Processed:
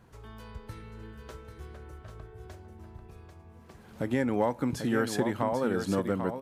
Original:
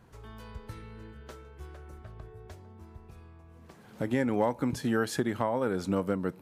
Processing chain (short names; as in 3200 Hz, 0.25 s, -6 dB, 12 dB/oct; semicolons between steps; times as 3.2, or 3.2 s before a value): echo 0.792 s -7.5 dB